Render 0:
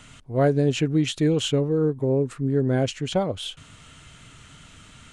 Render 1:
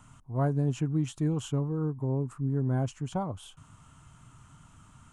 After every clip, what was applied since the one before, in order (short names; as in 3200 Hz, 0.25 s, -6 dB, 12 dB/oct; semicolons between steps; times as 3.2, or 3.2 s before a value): graphic EQ 125/500/1000/2000/4000 Hz +4/-10/+10/-10/-12 dB; gain -6.5 dB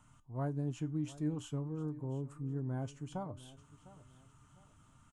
resonator 300 Hz, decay 0.22 s, harmonics all, mix 60%; feedback echo 0.704 s, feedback 34%, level -18 dB; gain -2.5 dB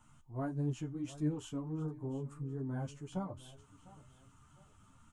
ensemble effect; gain +3.5 dB